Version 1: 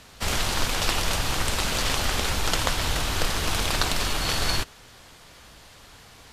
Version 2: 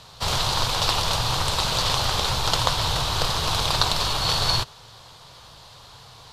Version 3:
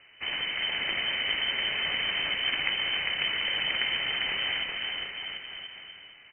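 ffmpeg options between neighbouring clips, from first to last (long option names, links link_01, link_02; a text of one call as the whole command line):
ffmpeg -i in.wav -af "equalizer=frequency=125:width_type=o:width=1:gain=12,equalizer=frequency=250:width_type=o:width=1:gain=-6,equalizer=frequency=500:width_type=o:width=1:gain=4,equalizer=frequency=1000:width_type=o:width=1:gain=10,equalizer=frequency=2000:width_type=o:width=1:gain=-5,equalizer=frequency=4000:width_type=o:width=1:gain=11,volume=-3.5dB" out.wav
ffmpeg -i in.wav -filter_complex "[0:a]asplit=2[link_01][link_02];[link_02]aecho=0:1:400|740|1029|1275|1483:0.631|0.398|0.251|0.158|0.1[link_03];[link_01][link_03]amix=inputs=2:normalize=0,lowpass=frequency=2600:width_type=q:width=0.5098,lowpass=frequency=2600:width_type=q:width=0.6013,lowpass=frequency=2600:width_type=q:width=0.9,lowpass=frequency=2600:width_type=q:width=2.563,afreqshift=-3100,volume=-6.5dB" out.wav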